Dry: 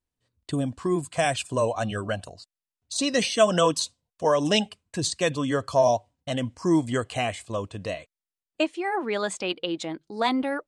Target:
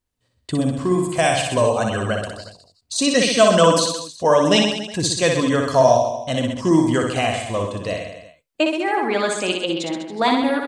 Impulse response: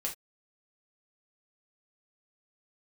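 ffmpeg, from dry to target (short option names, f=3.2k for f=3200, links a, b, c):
-filter_complex "[0:a]aecho=1:1:60|126|198.6|278.5|366.3:0.631|0.398|0.251|0.158|0.1,asplit=2[a][b];[1:a]atrim=start_sample=2205[c];[b][c]afir=irnorm=-1:irlink=0,volume=-16.5dB[d];[a][d]amix=inputs=2:normalize=0,volume=4dB"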